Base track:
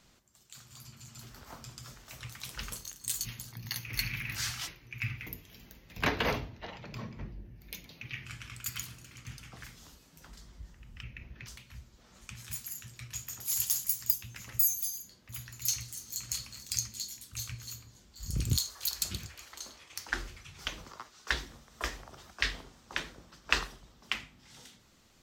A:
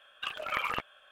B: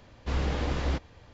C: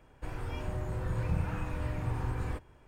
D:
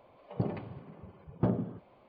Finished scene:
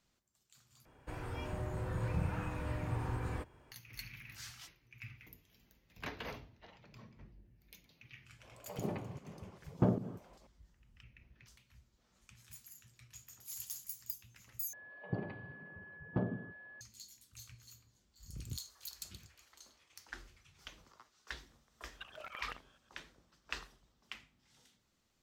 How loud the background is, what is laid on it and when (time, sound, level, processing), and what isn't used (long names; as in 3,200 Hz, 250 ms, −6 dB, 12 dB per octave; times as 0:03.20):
base track −14.5 dB
0:00.85: overwrite with C −2 dB + high-pass filter 77 Hz 6 dB per octave
0:08.39: mix in D −1 dB + fake sidechain pumping 151 BPM, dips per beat 1, −17 dB, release 113 ms
0:14.73: overwrite with D −6.5 dB + steady tone 1,700 Hz −45 dBFS
0:21.78: mix in A −10.5 dB + fake sidechain pumping 120 BPM, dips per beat 2, −19 dB, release 203 ms
not used: B